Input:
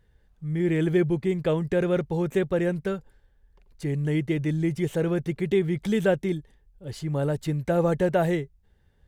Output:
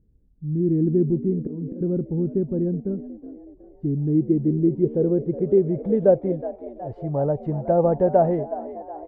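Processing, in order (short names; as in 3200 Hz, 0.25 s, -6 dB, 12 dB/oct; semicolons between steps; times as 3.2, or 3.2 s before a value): 1.04–1.81 auto swell 0.266 s; frequency-shifting echo 0.369 s, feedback 57%, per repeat +72 Hz, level -15 dB; low-pass sweep 280 Hz -> 720 Hz, 3.82–6.6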